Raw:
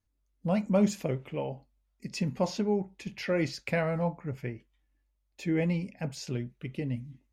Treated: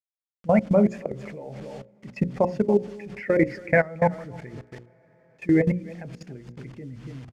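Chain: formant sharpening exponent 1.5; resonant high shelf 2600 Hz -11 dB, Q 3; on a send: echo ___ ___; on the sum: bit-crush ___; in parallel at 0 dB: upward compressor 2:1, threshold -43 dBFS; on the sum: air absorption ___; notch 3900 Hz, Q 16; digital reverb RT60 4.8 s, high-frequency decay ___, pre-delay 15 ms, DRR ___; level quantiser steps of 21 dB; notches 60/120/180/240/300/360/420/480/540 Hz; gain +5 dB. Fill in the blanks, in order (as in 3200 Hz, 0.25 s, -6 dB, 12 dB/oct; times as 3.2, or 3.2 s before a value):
0.285 s, -13 dB, 9-bit, 74 m, 0.95×, 20 dB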